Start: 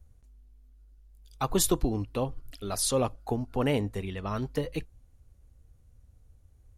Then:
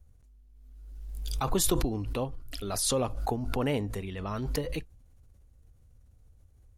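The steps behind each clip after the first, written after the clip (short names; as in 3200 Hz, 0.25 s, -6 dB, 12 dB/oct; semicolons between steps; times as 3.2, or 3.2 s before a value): backwards sustainer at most 30 dB/s; gain -2.5 dB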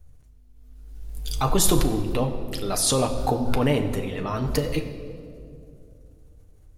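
reverb RT60 2.5 s, pre-delay 7 ms, DRR 4 dB; gain +5.5 dB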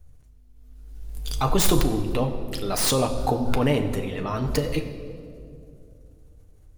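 tracing distortion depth 0.071 ms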